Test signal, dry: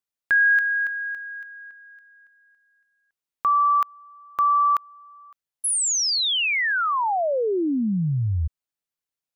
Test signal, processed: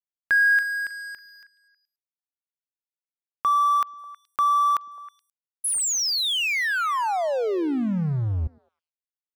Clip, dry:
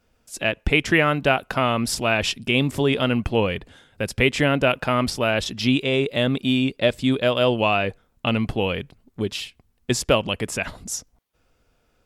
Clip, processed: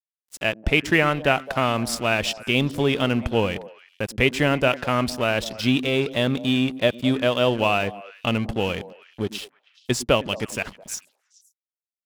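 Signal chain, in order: crossover distortion -36.5 dBFS; repeats whose band climbs or falls 106 ms, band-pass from 240 Hz, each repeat 1.4 oct, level -11 dB

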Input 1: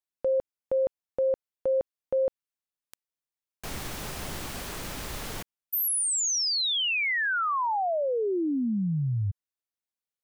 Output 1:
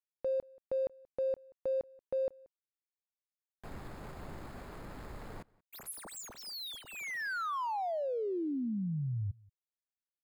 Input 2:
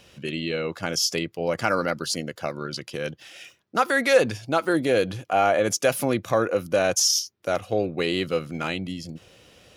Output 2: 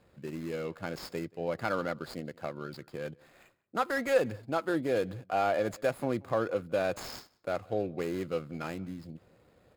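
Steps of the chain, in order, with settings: median filter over 15 samples; band-stop 5.8 kHz, Q 5.9; echo from a far wall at 31 m, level -25 dB; trim -7.5 dB

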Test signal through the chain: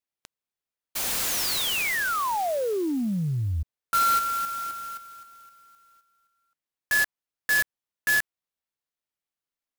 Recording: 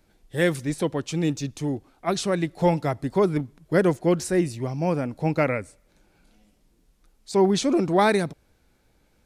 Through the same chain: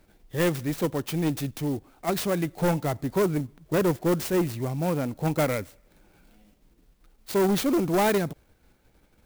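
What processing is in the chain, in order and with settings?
in parallel at -2 dB: level held to a coarse grid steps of 21 dB; on the sum: saturation -17.5 dBFS; sampling jitter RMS 0.039 ms; trim -1 dB

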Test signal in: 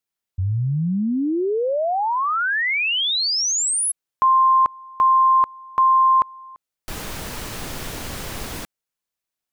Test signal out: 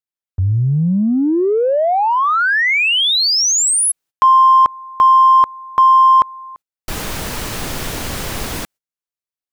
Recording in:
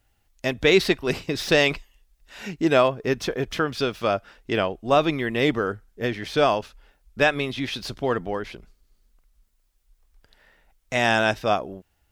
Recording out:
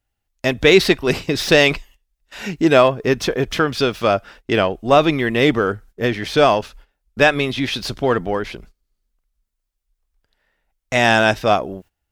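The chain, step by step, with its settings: gate -48 dBFS, range -17 dB; in parallel at -10.5 dB: saturation -22 dBFS; on the sum: trim +5 dB

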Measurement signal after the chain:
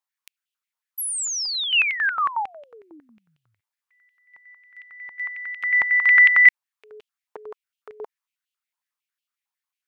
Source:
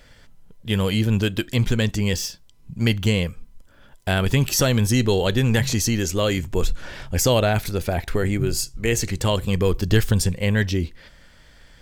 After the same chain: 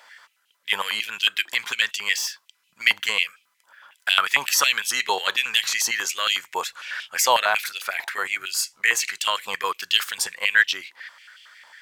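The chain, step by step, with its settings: step-sequenced high-pass 11 Hz 920–2900 Hz; trim +1 dB

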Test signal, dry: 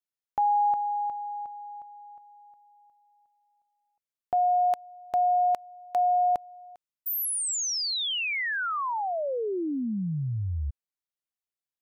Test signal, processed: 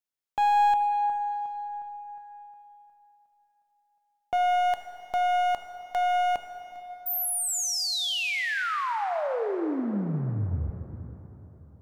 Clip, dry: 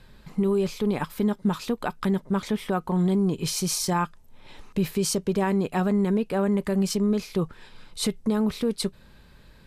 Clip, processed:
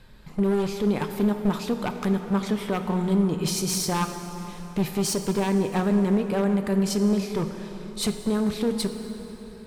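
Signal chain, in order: one-sided wavefolder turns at -22 dBFS; plate-style reverb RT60 4 s, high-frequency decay 0.65×, DRR 6.5 dB

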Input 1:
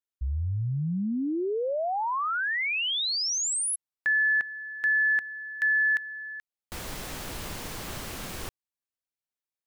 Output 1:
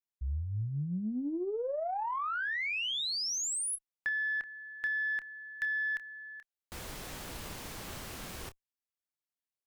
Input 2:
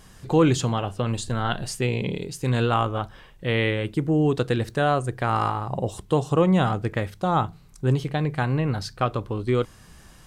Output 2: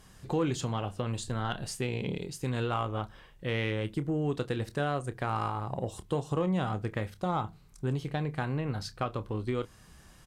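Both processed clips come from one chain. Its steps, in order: compression 2:1, threshold -24 dBFS; doubling 28 ms -12 dB; Chebyshev shaper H 4 -31 dB, 7 -39 dB, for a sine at -13 dBFS; trim -5.5 dB

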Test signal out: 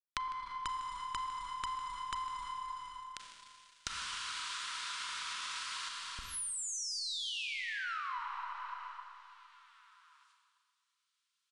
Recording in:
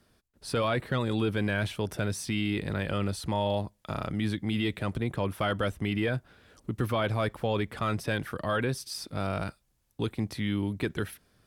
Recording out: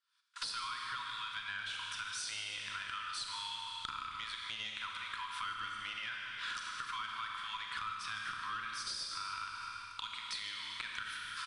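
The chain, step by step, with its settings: recorder AGC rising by 80 dB/s; gate -38 dBFS, range -31 dB; rippled Chebyshev high-pass 960 Hz, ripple 6 dB; treble shelf 5.9 kHz -7 dB; valve stage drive 26 dB, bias 0.4; steep low-pass 10 kHz 96 dB/octave; Schroeder reverb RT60 1.8 s, combs from 29 ms, DRR 1.5 dB; in parallel at -3 dB: peak limiter -27 dBFS; on the sum: compression 5:1, threshold -44 dBFS; on a send: feedback delay 153 ms, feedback 33%, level -15 dB; on the sum: tape noise reduction on one side only encoder only; trim +4.5 dB

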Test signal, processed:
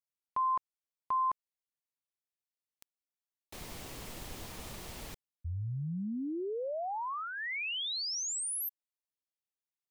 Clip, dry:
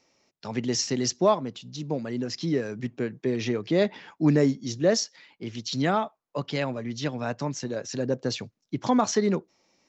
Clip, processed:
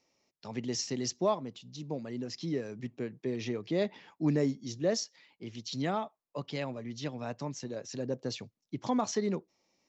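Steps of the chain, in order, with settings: peaking EQ 1.5 kHz -5 dB 0.42 oct; trim -7.5 dB

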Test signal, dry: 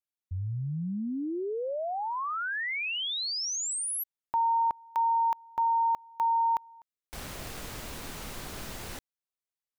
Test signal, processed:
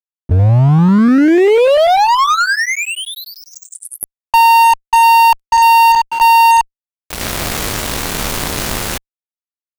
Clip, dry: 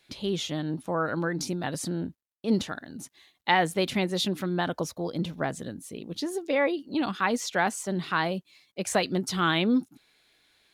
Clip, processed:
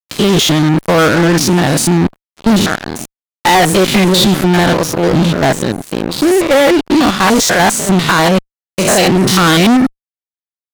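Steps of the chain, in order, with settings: spectrogram pixelated in time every 100 ms; fuzz box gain 35 dB, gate -42 dBFS; trim +7 dB

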